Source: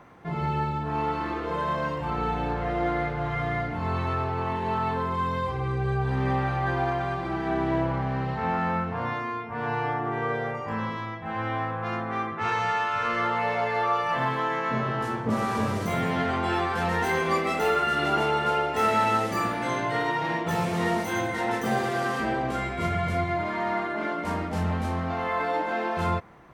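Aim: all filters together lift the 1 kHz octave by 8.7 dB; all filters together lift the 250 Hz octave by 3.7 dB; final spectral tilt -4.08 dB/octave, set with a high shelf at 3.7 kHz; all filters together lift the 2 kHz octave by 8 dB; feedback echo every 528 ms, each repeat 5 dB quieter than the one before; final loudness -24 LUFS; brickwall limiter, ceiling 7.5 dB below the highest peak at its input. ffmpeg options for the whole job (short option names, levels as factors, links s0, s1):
-af "equalizer=f=250:t=o:g=4.5,equalizer=f=1000:t=o:g=9,equalizer=f=2000:t=o:g=6,highshelf=f=3700:g=3,alimiter=limit=0.237:level=0:latency=1,aecho=1:1:528|1056|1584|2112|2640|3168|3696:0.562|0.315|0.176|0.0988|0.0553|0.031|0.0173,volume=0.631"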